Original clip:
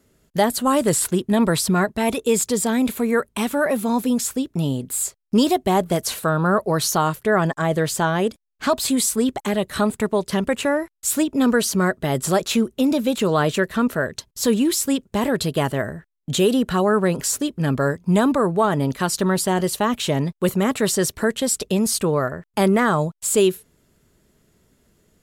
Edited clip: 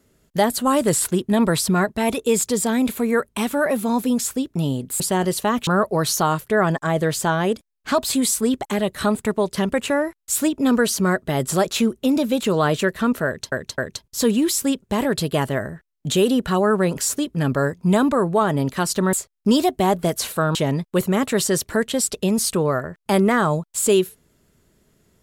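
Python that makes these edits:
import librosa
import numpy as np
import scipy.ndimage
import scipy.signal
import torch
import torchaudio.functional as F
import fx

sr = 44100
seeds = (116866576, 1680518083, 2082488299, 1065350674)

y = fx.edit(x, sr, fx.swap(start_s=5.0, length_s=1.42, other_s=19.36, other_length_s=0.67),
    fx.repeat(start_s=14.01, length_s=0.26, count=3), tone=tone)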